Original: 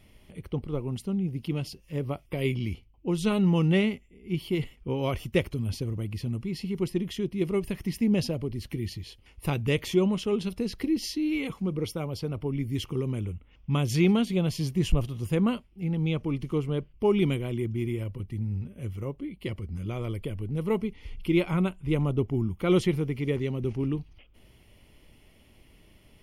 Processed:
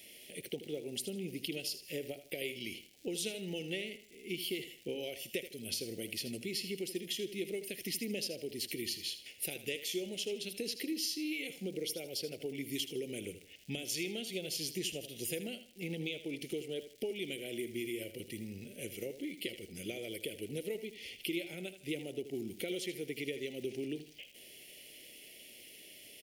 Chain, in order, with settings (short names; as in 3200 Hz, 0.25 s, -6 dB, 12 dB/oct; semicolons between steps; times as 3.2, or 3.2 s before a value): HPF 610 Hz 12 dB/oct; high shelf 11000 Hz +8 dB; compressor 6:1, threshold -45 dBFS, peak gain reduction 19 dB; crackle 290/s -56 dBFS; Butterworth band-stop 1100 Hz, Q 0.58; feedback echo 79 ms, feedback 32%, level -12 dB; gain +10.5 dB